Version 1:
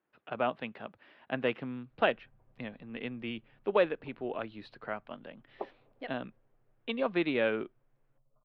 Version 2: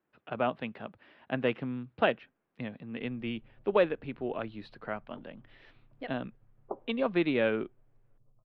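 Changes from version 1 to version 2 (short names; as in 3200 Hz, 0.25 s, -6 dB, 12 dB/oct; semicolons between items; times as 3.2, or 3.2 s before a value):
background: entry +1.10 s; master: add low shelf 260 Hz +6.5 dB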